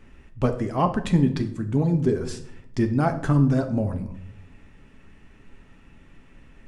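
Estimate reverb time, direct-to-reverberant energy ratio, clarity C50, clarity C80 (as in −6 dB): 0.70 s, 5.0 dB, 12.0 dB, 15.5 dB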